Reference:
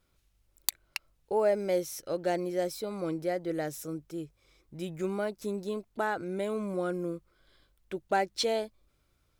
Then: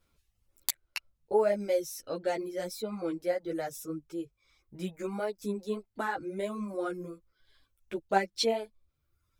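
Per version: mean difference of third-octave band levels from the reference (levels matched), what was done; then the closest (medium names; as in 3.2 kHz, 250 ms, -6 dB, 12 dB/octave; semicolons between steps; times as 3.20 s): 3.5 dB: reverb removal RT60 1 s; three-phase chorus; trim +3 dB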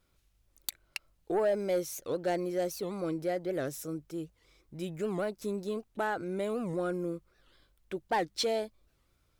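2.0 dB: saturation -21 dBFS, distortion -17 dB; warped record 78 rpm, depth 250 cents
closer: second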